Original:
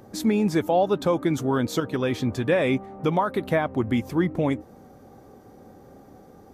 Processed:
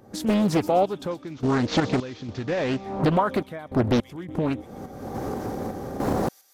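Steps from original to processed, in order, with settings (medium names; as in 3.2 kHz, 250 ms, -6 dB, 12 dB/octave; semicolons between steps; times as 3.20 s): 1.11–2.81 s: CVSD coder 32 kbps; recorder AGC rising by 44 dB/s; random-step tremolo, depth 100%; on a send: feedback echo behind a high-pass 126 ms, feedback 59%, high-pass 4.1 kHz, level -12 dB; on the sum: loudspeaker Doppler distortion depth 0.85 ms; trim +3.5 dB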